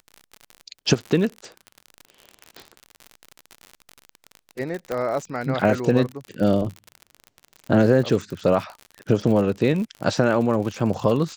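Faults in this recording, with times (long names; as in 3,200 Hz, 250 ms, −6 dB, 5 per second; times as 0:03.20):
surface crackle 56 per second −28 dBFS
0:04.92: click −14 dBFS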